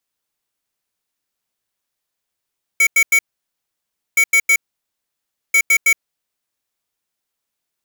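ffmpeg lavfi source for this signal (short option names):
-f lavfi -i "aevalsrc='0.251*(2*lt(mod(2250*t,1),0.5)-1)*clip(min(mod(mod(t,1.37),0.16),0.07-mod(mod(t,1.37),0.16))/0.005,0,1)*lt(mod(t,1.37),0.48)':d=4.11:s=44100"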